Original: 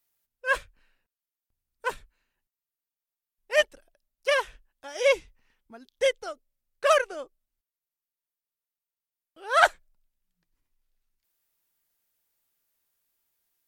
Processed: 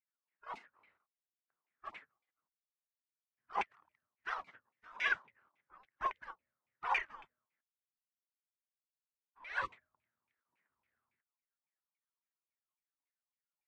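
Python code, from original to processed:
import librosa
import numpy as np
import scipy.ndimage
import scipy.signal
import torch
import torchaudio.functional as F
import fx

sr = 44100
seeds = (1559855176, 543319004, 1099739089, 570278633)

y = fx.spec_gate(x, sr, threshold_db=-25, keep='weak')
y = fx.filter_lfo_lowpass(y, sr, shape='saw_down', hz=3.6, low_hz=900.0, high_hz=2400.0, q=6.8)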